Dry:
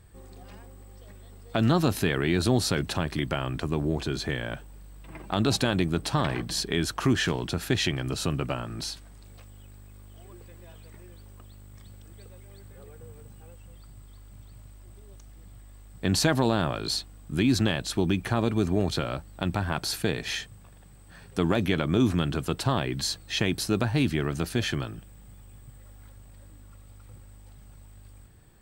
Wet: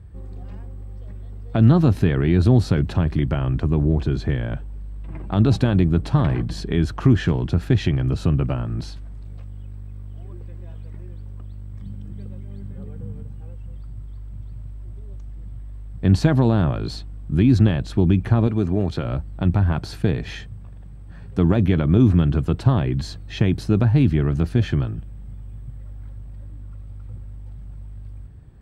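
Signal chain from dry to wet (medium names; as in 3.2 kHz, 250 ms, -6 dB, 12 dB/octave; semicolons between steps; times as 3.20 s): high-pass 51 Hz; RIAA curve playback; 11.81–13.23 s: small resonant body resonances 200/3100 Hz, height 11 dB; 18.47–19.05 s: bass shelf 170 Hz -9 dB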